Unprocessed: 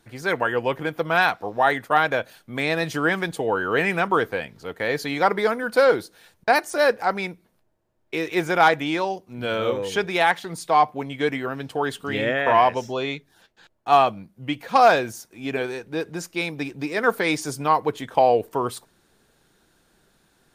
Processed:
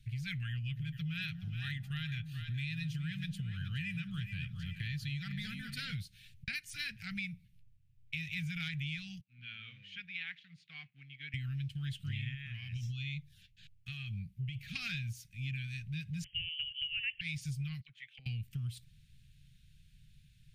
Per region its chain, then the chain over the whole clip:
0.5–5.9 notch 2200 Hz, Q 8.2 + echo with dull and thin repeats by turns 0.211 s, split 820 Hz, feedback 56%, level -7 dB
9.21–11.34 G.711 law mismatch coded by A + HPF 520 Hz + tape spacing loss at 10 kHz 36 dB
12.34–14.55 high shelf 7900 Hz +4 dB + compressor 5:1, threshold -27 dBFS
16.24–17.21 dynamic EQ 2300 Hz, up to -4 dB, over -37 dBFS, Q 1.5 + inverted band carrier 3200 Hz
17.81–18.26 auto-wah 420–4900 Hz, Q 6.2, down, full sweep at -16 dBFS + high shelf 2900 Hz +8 dB
whole clip: elliptic band-stop 140–2500 Hz, stop band 50 dB; tone controls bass +9 dB, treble -12 dB; compressor, threshold -37 dBFS; gain +1 dB

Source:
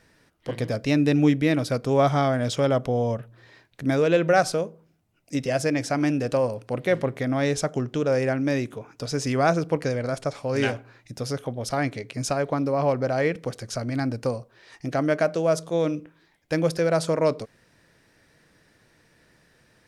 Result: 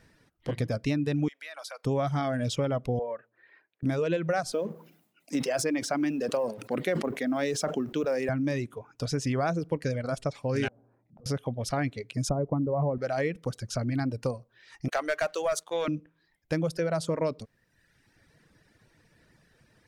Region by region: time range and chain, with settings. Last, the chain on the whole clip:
1.28–1.85 HPF 710 Hz 24 dB/oct + compressor 8:1, threshold -33 dBFS
2.99–3.83 Chebyshev band-pass 390–2000 Hz + auto swell 0.133 s
4.52–8.29 G.711 law mismatch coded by mu + HPF 200 Hz 24 dB/oct + sustainer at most 82 dB/s
10.68–11.26 Chebyshev band-pass 170–750 Hz + compressor 16:1, threshold -44 dBFS + transient shaper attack -10 dB, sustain +8 dB
12.29–12.98 polynomial smoothing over 65 samples + tilt -2 dB/oct
14.88–15.88 HPF 850 Hz + notch 5200 Hz, Q 6.6 + sample leveller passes 2
whole clip: reverb removal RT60 1 s; tone controls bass +5 dB, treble -1 dB; compressor, threshold -22 dBFS; gain -2 dB

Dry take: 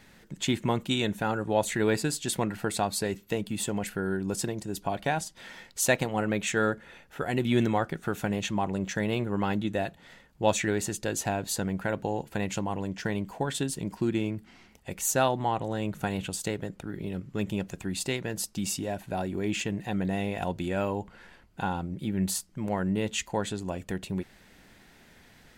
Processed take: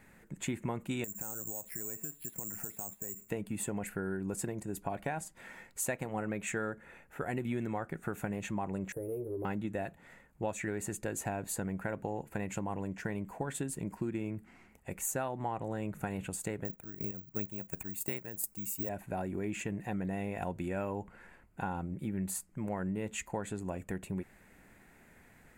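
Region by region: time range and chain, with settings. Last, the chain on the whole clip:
1.04–3.29 compressor 12:1, threshold -39 dBFS + high shelf 3300 Hz -10 dB + careless resampling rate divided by 6×, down filtered, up zero stuff
8.92–9.45 EQ curve 130 Hz 0 dB, 190 Hz -21 dB, 400 Hz +8 dB, 1300 Hz -27 dB, 6500 Hz -28 dB, 10000 Hz +12 dB + compressor 2.5:1, threshold -33 dBFS + doubler 13 ms -6 dB
16.65–18.89 bell 11000 Hz +10 dB 0.99 oct + chopper 2.8 Hz, depth 65%, duty 30% + careless resampling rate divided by 2×, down filtered, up zero stuff
whole clip: band shelf 4200 Hz -11.5 dB 1.2 oct; compressor, threshold -28 dBFS; gain -3.5 dB

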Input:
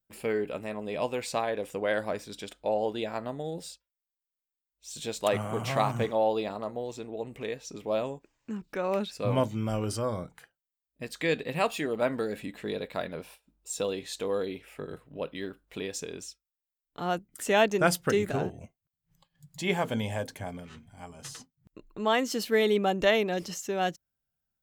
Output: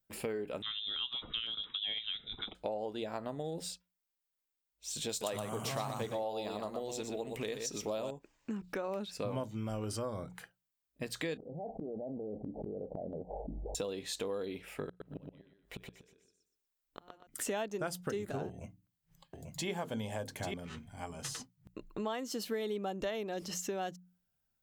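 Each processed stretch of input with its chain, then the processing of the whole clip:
0.62–2.55 inverted band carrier 3800 Hz + stepped notch 5.9 Hz 450–2000 Hz
5.09–8.11 high shelf 3100 Hz +10 dB + echo 0.12 s -7.5 dB
11.37–13.75 steep low-pass 820 Hz 96 dB/oct + flipped gate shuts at -33 dBFS, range -39 dB + fast leveller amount 100%
14.88–17.27 flipped gate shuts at -33 dBFS, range -34 dB + feedback echo 0.121 s, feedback 33%, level -4 dB
18.49–20.54 notches 50/100/150/200/250/300/350 Hz + echo 0.841 s -5.5 dB
whole clip: notches 60/120/180 Hz; dynamic EQ 2200 Hz, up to -5 dB, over -45 dBFS, Q 1.6; compressor 5:1, threshold -38 dBFS; gain +2.5 dB

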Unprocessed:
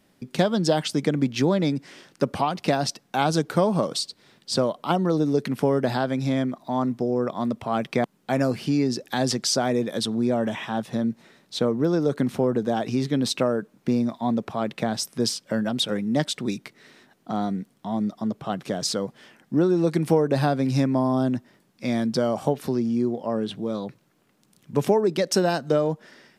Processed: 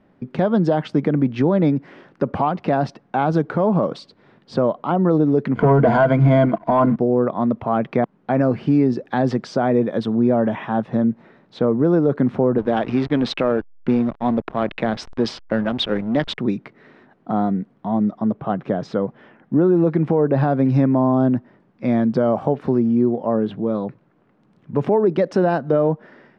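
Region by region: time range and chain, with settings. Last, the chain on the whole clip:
5.55–6.96 median filter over 9 samples + ripple EQ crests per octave 1.8, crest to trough 15 dB + sample leveller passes 2
12.58–16.39 weighting filter D + backlash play -27 dBFS
18.34–20.39 air absorption 65 m + notch 4500 Hz, Q 13
whole clip: LPF 1500 Hz 12 dB/oct; limiter -14.5 dBFS; gain +6.5 dB

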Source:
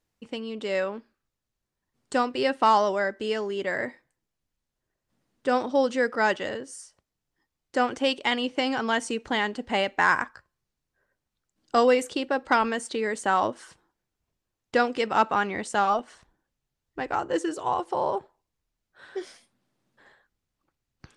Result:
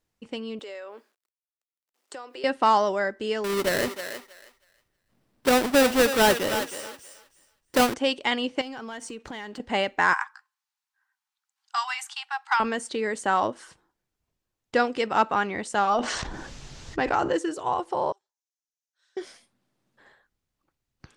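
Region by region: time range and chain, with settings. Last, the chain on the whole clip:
0.59–2.44 requantised 12-bit, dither none + HPF 350 Hz 24 dB/oct + compressor 4:1, threshold -38 dBFS
3.44–7.94 half-waves squared off + notch 6600 Hz, Q 19 + thinning echo 0.318 s, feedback 20%, high-pass 610 Hz, level -8 dB
8.61–9.6 sample leveller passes 1 + compressor, threshold -35 dBFS
10.13–12.6 Chebyshev high-pass 780 Hz, order 8 + short-mantissa float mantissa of 8-bit
15.91–17.33 LPF 6800 Hz 24 dB/oct + high shelf 4700 Hz +6.5 dB + fast leveller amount 70%
18.12–19.17 compressor 1.5:1, threshold -41 dBFS + band-pass 6200 Hz, Q 4.1
whole clip: dry

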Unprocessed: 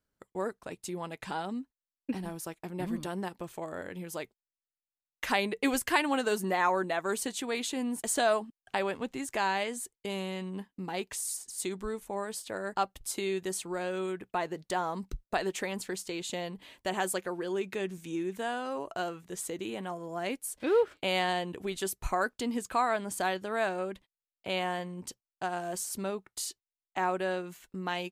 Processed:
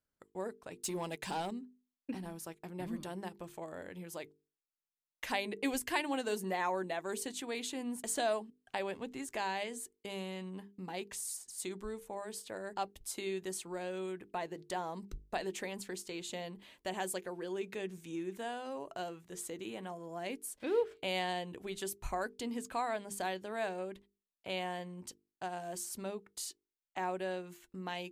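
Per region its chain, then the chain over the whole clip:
0.82–1.51 tone controls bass -3 dB, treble +4 dB + sample leveller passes 2
whole clip: dynamic EQ 1300 Hz, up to -7 dB, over -48 dBFS, Q 2.6; notches 50/100/150/200/250/300/350/400/450 Hz; gain -5.5 dB

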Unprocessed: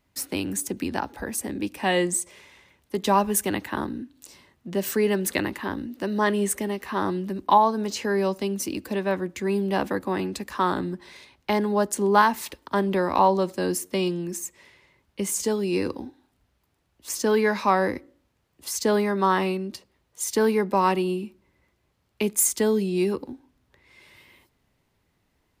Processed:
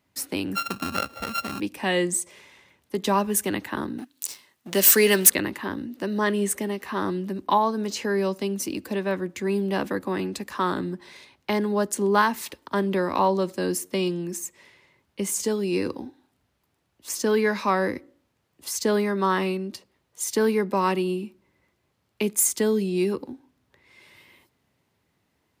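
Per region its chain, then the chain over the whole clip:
0.55–1.6 sample sorter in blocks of 32 samples + bell 7100 Hz -4 dB 0.54 oct + comb 1.5 ms, depth 46%
3.98–5.3 tilt +3 dB/oct + sample leveller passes 2
whole clip: HPF 91 Hz; dynamic EQ 790 Hz, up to -5 dB, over -36 dBFS, Q 2.2

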